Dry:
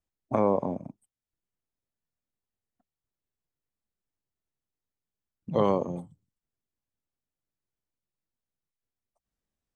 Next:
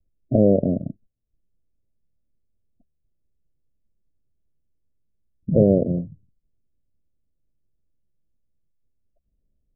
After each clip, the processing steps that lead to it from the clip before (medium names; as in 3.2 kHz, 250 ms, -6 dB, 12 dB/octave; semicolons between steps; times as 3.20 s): steep low-pass 680 Hz 96 dB/octave; tilt EQ -3.5 dB/octave; trim +3.5 dB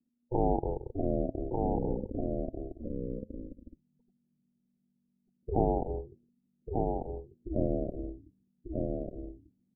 ring modulator 240 Hz; ever faster or slower copies 553 ms, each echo -4 st, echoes 2; delay 1193 ms -3.5 dB; trim -8.5 dB